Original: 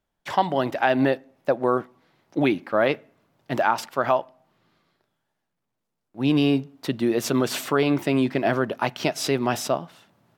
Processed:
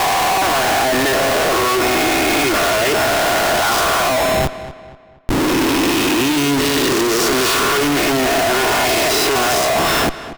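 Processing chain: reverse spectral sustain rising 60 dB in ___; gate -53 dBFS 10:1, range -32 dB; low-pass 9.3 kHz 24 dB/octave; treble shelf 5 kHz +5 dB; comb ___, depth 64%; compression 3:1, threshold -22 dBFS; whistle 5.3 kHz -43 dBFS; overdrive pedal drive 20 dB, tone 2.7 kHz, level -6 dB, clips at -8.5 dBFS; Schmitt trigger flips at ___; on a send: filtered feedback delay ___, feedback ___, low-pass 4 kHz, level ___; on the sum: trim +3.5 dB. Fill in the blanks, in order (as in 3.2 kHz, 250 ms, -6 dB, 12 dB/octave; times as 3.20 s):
1.59 s, 2.8 ms, -33.5 dBFS, 238 ms, 40%, -14 dB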